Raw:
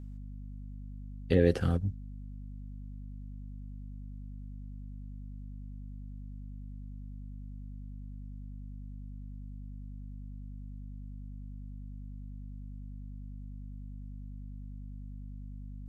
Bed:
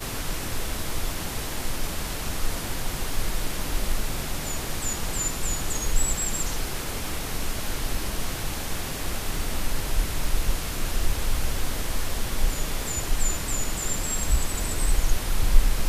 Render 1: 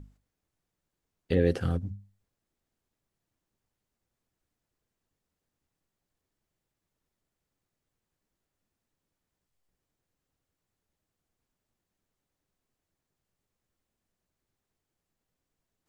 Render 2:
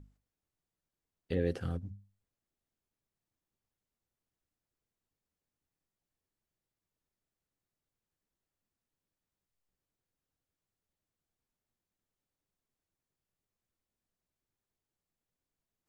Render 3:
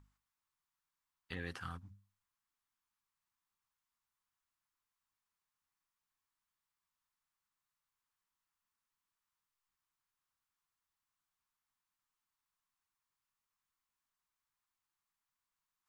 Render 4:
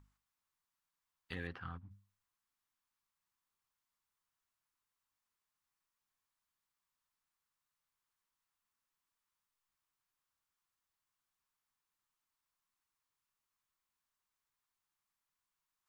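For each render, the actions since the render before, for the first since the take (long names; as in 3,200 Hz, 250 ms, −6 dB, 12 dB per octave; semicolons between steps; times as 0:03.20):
mains-hum notches 50/100/150/200/250 Hz
level −7.5 dB
low shelf with overshoot 740 Hz −11.5 dB, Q 3
0:01.47–0:01.91: high-frequency loss of the air 330 metres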